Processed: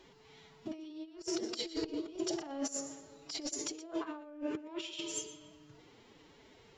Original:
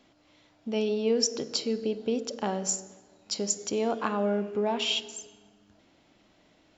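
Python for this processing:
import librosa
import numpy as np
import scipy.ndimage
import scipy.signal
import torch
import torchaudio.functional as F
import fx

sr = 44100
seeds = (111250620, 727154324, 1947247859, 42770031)

y = fx.over_compress(x, sr, threshold_db=-35.0, ratio=-0.5)
y = y + 10.0 ** (-15.5 / 20.0) * np.pad(y, (int(120 * sr / 1000.0), 0))[:len(y)]
y = fx.pitch_keep_formants(y, sr, semitones=6.5)
y = F.gain(torch.from_numpy(y), -3.5).numpy()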